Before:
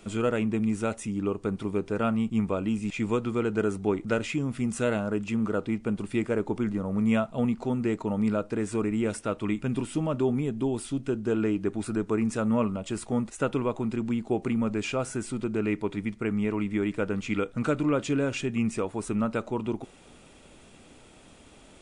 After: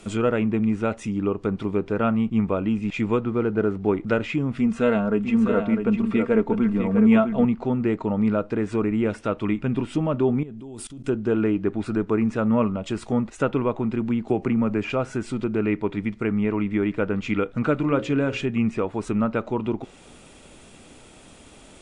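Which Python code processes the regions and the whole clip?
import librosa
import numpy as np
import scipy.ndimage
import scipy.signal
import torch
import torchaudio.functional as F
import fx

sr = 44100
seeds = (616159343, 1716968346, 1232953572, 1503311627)

y = fx.chain(x, sr, fx.cvsd(bps=64000),
    fx.high_shelf(hz=2900.0, db=-12.0), at=(3.24, 3.89))
y = fx.chain(y, sr, fx.comb(ms=4.4, depth=0.52),
    fx.echo_single(ms=652, db=-7.0), at=(4.59, 7.45))
y = fx.chain(y, sr, fx.low_shelf(hz=430.0, db=3.0),
    fx.level_steps(step_db=21), at=(10.43, 11.04))
y = fx.chain(y, sr, fx.peak_eq(hz=3700.0, db=-7.0, octaves=0.5),
    fx.band_squash(depth_pct=70), at=(14.28, 14.9))
y = fx.chain(y, sr, fx.high_shelf(hz=6100.0, db=6.5),
    fx.hum_notches(base_hz=60, count=10), at=(17.74, 18.44))
y = fx.env_lowpass_down(y, sr, base_hz=2700.0, full_db=-25.5)
y = fx.high_shelf(y, sr, hz=7400.0, db=4.5)
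y = y * librosa.db_to_amplitude(4.5)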